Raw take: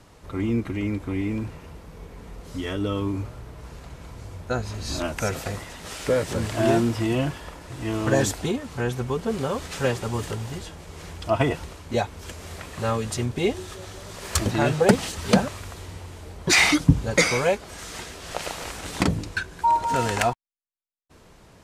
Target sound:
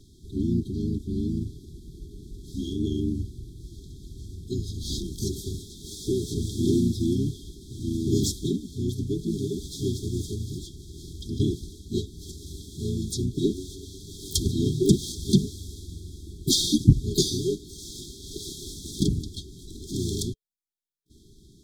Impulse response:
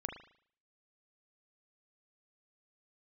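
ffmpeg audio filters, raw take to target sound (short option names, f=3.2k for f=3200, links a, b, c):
-filter_complex "[0:a]aeval=exprs='0.841*(cos(1*acos(clip(val(0)/0.841,-1,1)))-cos(1*PI/2))+0.015*(cos(4*acos(clip(val(0)/0.841,-1,1)))-cos(4*PI/2))':c=same,asplit=3[a][b][c];[b]asetrate=33038,aresample=44100,atempo=1.33484,volume=-1dB[d];[c]asetrate=88200,aresample=44100,atempo=0.5,volume=-14dB[e];[a][d][e]amix=inputs=3:normalize=0,afftfilt=real='re*(1-between(b*sr/4096,420,3200))':imag='im*(1-between(b*sr/4096,420,3200))':win_size=4096:overlap=0.75,volume=-3dB"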